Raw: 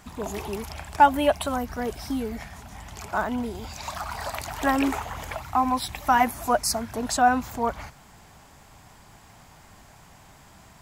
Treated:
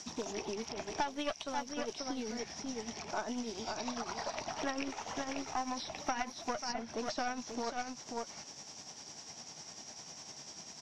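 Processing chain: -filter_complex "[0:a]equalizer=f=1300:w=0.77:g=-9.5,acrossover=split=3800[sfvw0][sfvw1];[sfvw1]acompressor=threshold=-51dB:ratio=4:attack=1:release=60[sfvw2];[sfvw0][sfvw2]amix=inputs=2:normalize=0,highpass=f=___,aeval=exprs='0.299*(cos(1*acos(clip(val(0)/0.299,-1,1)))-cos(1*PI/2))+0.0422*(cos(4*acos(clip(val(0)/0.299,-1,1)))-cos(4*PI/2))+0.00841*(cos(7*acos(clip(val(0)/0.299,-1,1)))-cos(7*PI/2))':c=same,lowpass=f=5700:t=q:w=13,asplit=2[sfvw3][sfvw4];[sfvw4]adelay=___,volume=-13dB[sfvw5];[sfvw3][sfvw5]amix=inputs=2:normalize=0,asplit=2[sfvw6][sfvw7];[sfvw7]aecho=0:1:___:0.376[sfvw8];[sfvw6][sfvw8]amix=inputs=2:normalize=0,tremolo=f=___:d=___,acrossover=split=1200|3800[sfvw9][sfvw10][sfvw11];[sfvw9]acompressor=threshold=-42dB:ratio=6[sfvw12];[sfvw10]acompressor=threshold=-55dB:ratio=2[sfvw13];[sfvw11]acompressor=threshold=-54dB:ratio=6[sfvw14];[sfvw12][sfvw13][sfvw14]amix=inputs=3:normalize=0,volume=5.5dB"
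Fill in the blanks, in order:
250, 13, 537, 10, 0.51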